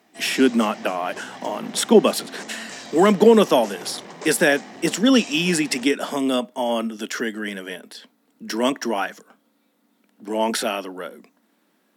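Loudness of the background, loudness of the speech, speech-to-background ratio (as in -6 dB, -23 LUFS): -38.5 LUFS, -21.0 LUFS, 17.5 dB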